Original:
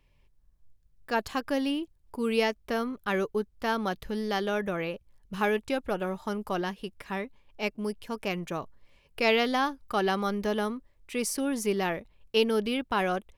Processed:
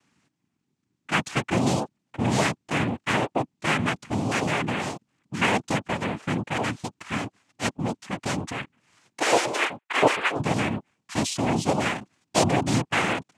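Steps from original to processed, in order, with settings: 9.2–10.39 sine-wave speech; fifteen-band EQ 250 Hz +3 dB, 630 Hz -9 dB, 1600 Hz +5 dB; noise vocoder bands 4; gain +4.5 dB

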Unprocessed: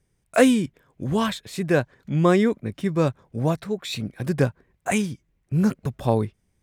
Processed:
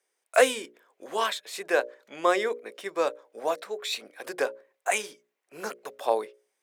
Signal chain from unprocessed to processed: HPF 460 Hz 24 dB/oct; notches 60/120/180/240/300/360/420/480/540/600 Hz

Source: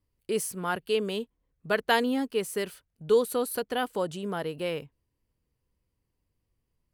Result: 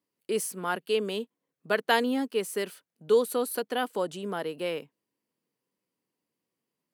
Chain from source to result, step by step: HPF 190 Hz 24 dB/oct

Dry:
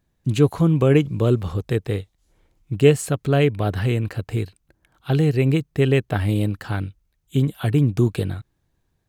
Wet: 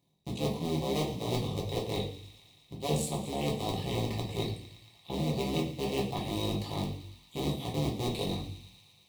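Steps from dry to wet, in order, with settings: cycle switcher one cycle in 2, muted; Bessel high-pass 150 Hz, order 2; bell 3800 Hz +10.5 dB 0.26 oct; reverse; compressor 6:1, threshold -30 dBFS, peak gain reduction 17 dB; reverse; Butterworth band-stop 1500 Hz, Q 1.4; resonator 760 Hz, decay 0.15 s, harmonics all, mix 70%; on a send: thin delay 0.114 s, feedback 78%, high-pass 1800 Hz, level -14 dB; on the sum: shoebox room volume 51 m³, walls mixed, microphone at 0.8 m; gain +7.5 dB

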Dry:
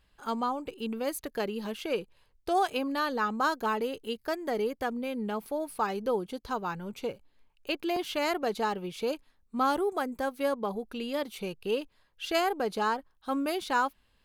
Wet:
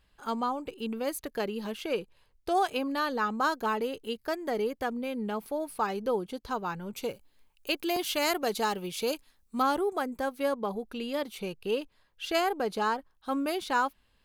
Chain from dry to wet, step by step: 6.94–9.61 high shelf 5700 Hz -> 3400 Hz +12 dB

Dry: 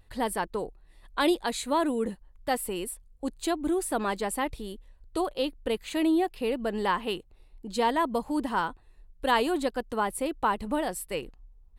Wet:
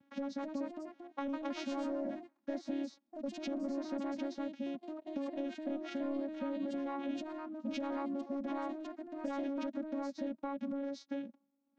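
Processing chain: vocoder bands 8, saw 278 Hz; soft clip -19.5 dBFS, distortion -19 dB; formant shift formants -4 st; limiter -29.5 dBFS, peak gain reduction 10 dB; compressor, threshold -38 dBFS, peak gain reduction 6 dB; echoes that change speed 0.282 s, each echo +2 st, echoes 2, each echo -6 dB; gain +2.5 dB

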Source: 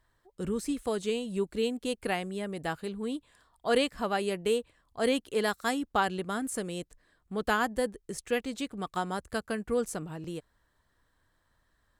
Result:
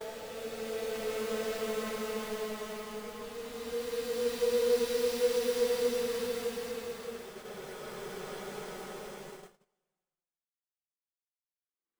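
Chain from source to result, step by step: band-pass sweep 5500 Hz -> 420 Hz, 8.77–9.55; diffused feedback echo 0.749 s, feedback 42%, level -11.5 dB; requantised 6-bit, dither none; Paulstretch 16×, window 0.25 s, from 9.44; gate -46 dBFS, range -30 dB

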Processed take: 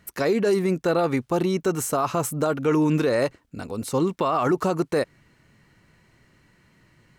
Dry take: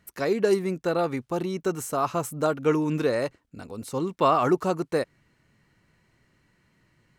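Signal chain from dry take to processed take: limiter -20 dBFS, peak gain reduction 11 dB; gain +6.5 dB

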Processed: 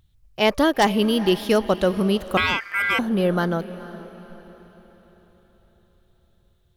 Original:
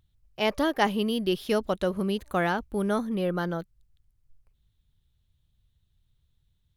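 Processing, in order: diffused feedback echo 0.463 s, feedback 46%, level -16 dB; 2.37–2.99 ring modulator 1800 Hz; wavefolder -15 dBFS; gain +7 dB

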